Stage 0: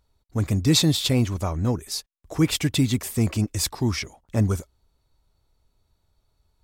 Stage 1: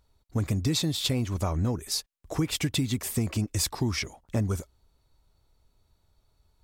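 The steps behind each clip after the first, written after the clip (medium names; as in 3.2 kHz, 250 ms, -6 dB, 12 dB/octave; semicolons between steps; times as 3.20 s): compression 10:1, threshold -24 dBFS, peak gain reduction 11 dB; trim +1 dB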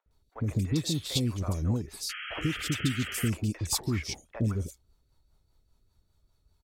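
three bands offset in time mids, lows, highs 60/110 ms, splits 570/2600 Hz; rotary cabinet horn 5 Hz; painted sound noise, 2.09–3.30 s, 1.2–3.3 kHz -39 dBFS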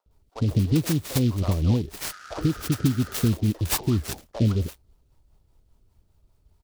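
Butterworth band-stop 2.6 kHz, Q 0.6; delay time shaken by noise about 3.5 kHz, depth 0.05 ms; trim +7 dB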